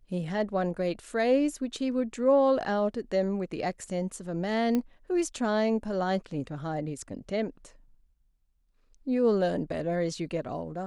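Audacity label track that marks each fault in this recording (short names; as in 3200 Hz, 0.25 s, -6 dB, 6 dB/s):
4.750000	4.750000	pop -16 dBFS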